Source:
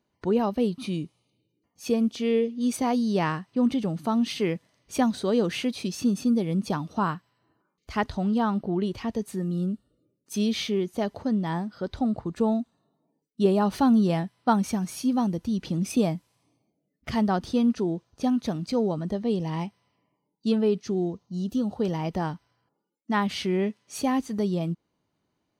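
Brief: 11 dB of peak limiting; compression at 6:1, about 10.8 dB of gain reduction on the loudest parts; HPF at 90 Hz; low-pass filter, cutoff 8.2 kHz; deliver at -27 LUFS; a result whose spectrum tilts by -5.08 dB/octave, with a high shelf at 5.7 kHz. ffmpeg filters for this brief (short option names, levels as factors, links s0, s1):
-af "highpass=90,lowpass=8200,highshelf=f=5700:g=7,acompressor=threshold=0.0398:ratio=6,volume=2.99,alimiter=limit=0.119:level=0:latency=1"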